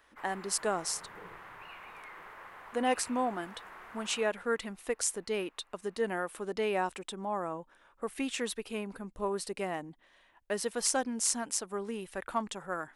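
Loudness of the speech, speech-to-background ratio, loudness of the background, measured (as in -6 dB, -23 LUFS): -34.0 LUFS, 14.5 dB, -48.5 LUFS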